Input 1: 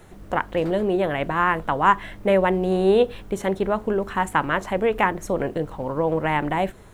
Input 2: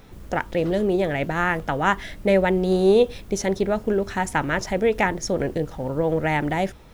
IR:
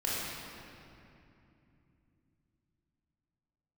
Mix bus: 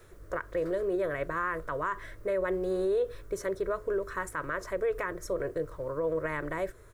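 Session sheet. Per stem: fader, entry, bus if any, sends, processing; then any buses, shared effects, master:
-5.0 dB, 0.00 s, no send, fixed phaser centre 810 Hz, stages 6
-15.0 dB, 3.1 ms, polarity flipped, no send, tilt shelf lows -7.5 dB, about 720 Hz; auto duck -10 dB, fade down 0.20 s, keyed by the first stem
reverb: off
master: limiter -22 dBFS, peak gain reduction 9.5 dB

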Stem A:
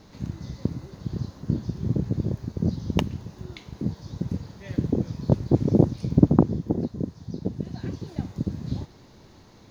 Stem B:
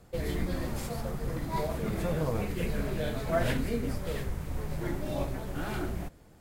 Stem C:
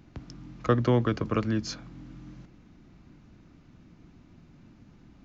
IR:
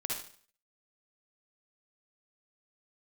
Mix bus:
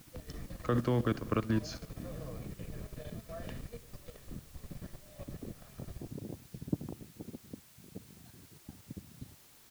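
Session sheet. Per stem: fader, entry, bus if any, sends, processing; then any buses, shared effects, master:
-16.5 dB, 0.50 s, send -24 dB, dry
-15.5 dB, 0.00 s, send -21.5 dB, comb 1.7 ms, depth 69%
-3.0 dB, 0.00 s, send -13 dB, dry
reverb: on, RT60 0.50 s, pre-delay 49 ms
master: level quantiser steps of 14 dB; requantised 10-bit, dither triangular

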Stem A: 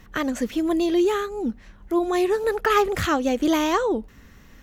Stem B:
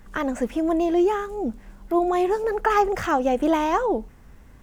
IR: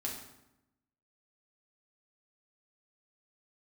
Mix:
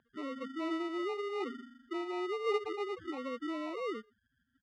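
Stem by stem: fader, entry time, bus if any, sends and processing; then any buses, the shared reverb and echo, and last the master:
-2.0 dB, 0.00 s, no send, tube stage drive 23 dB, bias 0.5; auto duck -6 dB, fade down 0.35 s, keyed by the second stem
-11.5 dB, 2.3 ms, send -3.5 dB, notches 50/100/150 Hz; flipped gate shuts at -15 dBFS, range -30 dB; hum 50 Hz, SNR 31 dB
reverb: on, RT60 0.90 s, pre-delay 4 ms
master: loudest bins only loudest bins 4; sample-and-hold 27×; BPF 300–2700 Hz

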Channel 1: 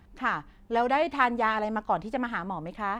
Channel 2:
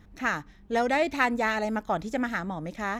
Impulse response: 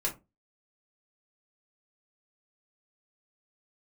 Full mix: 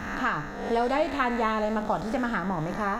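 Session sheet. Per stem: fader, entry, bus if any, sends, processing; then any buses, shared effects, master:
-4.0 dB, 0.00 s, send -8 dB, resonant low shelf 150 Hz +8.5 dB, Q 1.5; notch 1000 Hz, Q 14
-2.0 dB, 0.00 s, no send, time blur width 0.327 s; notch 2300 Hz, Q 11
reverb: on, RT60 0.25 s, pre-delay 3 ms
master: three-band squash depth 70%

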